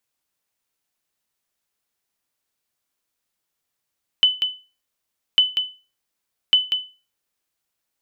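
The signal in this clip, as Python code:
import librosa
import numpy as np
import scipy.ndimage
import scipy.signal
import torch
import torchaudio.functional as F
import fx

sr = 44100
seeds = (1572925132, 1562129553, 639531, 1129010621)

y = fx.sonar_ping(sr, hz=3010.0, decay_s=0.32, every_s=1.15, pings=3, echo_s=0.19, echo_db=-7.0, level_db=-7.0)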